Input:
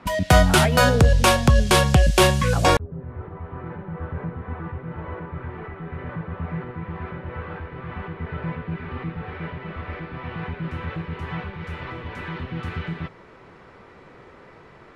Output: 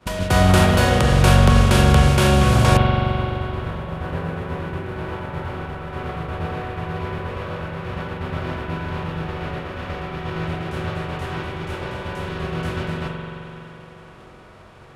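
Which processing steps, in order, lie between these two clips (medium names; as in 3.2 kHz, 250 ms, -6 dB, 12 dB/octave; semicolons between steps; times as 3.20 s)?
spectral levelling over time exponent 0.4; expander -11 dBFS; spring tank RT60 3.3 s, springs 43 ms, chirp 70 ms, DRR 0.5 dB; trim -7 dB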